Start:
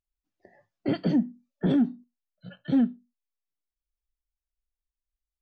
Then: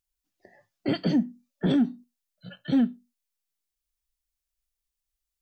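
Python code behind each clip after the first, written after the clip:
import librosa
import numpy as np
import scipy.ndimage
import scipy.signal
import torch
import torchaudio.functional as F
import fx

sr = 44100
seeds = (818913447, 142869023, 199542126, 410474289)

y = fx.high_shelf(x, sr, hz=2600.0, db=10.0)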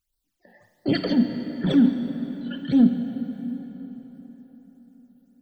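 y = fx.transient(x, sr, attack_db=-4, sustain_db=8)
y = fx.phaser_stages(y, sr, stages=12, low_hz=110.0, high_hz=2400.0, hz=1.5, feedback_pct=25)
y = fx.rev_plate(y, sr, seeds[0], rt60_s=4.6, hf_ratio=0.65, predelay_ms=0, drr_db=6.5)
y = y * librosa.db_to_amplitude(5.5)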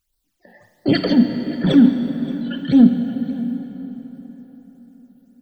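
y = x + 10.0 ** (-18.5 / 20.0) * np.pad(x, (int(578 * sr / 1000.0), 0))[:len(x)]
y = y * librosa.db_to_amplitude(6.0)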